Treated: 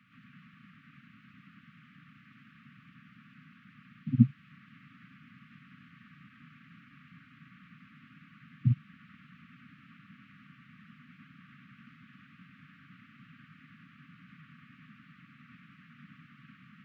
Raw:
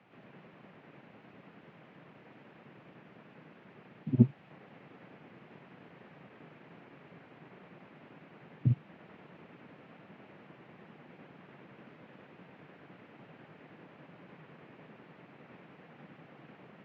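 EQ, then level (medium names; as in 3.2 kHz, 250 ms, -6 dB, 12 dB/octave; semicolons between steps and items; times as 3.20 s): brick-wall FIR band-stop 280–1100 Hz; +1.5 dB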